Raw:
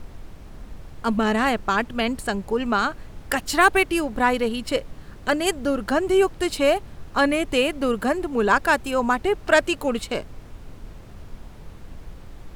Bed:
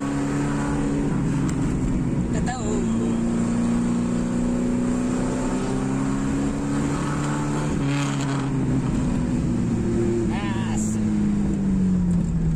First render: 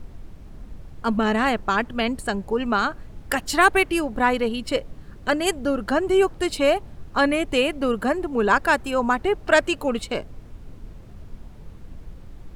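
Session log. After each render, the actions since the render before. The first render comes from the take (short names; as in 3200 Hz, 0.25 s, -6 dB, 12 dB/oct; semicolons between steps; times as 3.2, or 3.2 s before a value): denoiser 6 dB, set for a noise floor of -43 dBFS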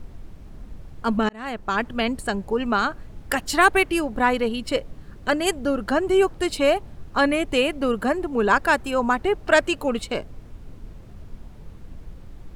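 1.29–1.86 fade in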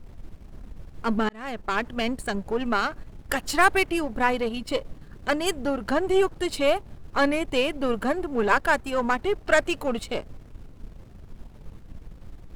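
half-wave gain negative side -7 dB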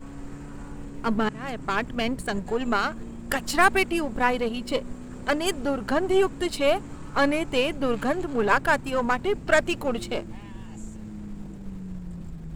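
add bed -17.5 dB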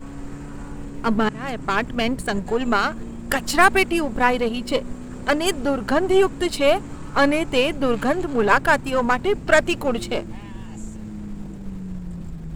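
gain +4.5 dB; limiter -1 dBFS, peak gain reduction 1 dB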